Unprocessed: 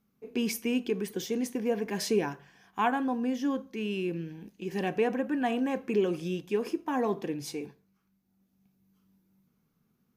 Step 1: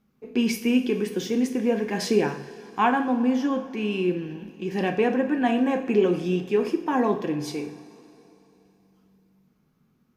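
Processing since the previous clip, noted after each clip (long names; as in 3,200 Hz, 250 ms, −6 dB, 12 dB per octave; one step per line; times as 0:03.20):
high-shelf EQ 7,100 Hz −10 dB
convolution reverb, pre-delay 3 ms, DRR 5 dB
level +5.5 dB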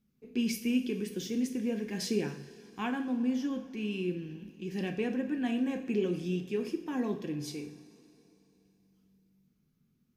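parametric band 880 Hz −14 dB 2.2 octaves
level −4 dB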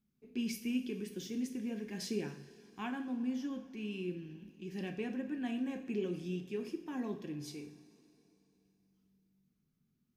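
notch filter 490 Hz, Q 12
level −6 dB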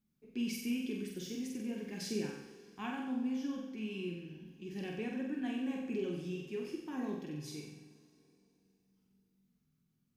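flutter between parallel walls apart 7.9 metres, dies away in 0.76 s
level −1.5 dB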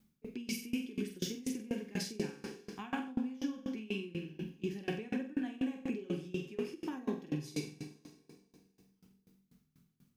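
downward compressor 4 to 1, threshold −44 dBFS, peak gain reduction 11 dB
tremolo with a ramp in dB decaying 4.1 Hz, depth 23 dB
level +15 dB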